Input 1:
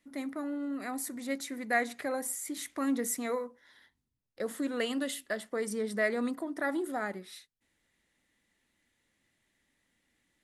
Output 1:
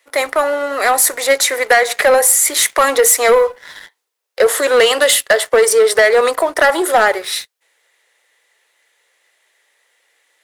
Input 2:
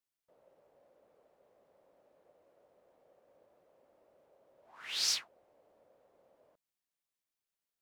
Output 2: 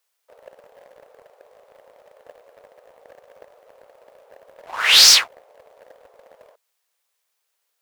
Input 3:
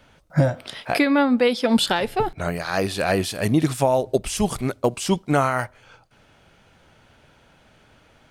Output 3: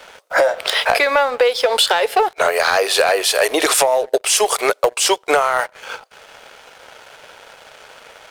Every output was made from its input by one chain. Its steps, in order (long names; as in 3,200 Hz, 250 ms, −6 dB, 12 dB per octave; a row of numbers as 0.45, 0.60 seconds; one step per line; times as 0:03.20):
elliptic high-pass filter 440 Hz, stop band 60 dB
downward compressor 20 to 1, threshold −32 dBFS
leveller curve on the samples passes 2
normalise the peak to −3 dBFS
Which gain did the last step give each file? +21.0, +21.0, +14.0 decibels